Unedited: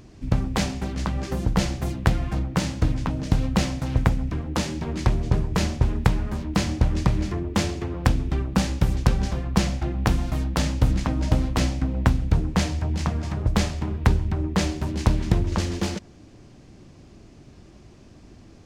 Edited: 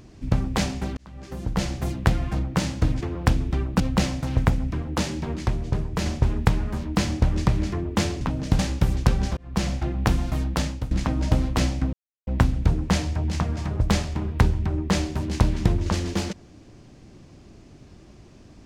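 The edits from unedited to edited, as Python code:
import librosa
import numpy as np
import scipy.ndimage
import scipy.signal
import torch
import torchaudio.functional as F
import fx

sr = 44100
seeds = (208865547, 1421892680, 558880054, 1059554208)

y = fx.edit(x, sr, fx.fade_in_span(start_s=0.97, length_s=0.88),
    fx.swap(start_s=3.01, length_s=0.38, other_s=7.8, other_length_s=0.79),
    fx.clip_gain(start_s=4.95, length_s=0.7, db=-3.5),
    fx.fade_in_span(start_s=9.37, length_s=0.34),
    fx.fade_out_to(start_s=10.52, length_s=0.39, floor_db=-17.0),
    fx.insert_silence(at_s=11.93, length_s=0.34), tone=tone)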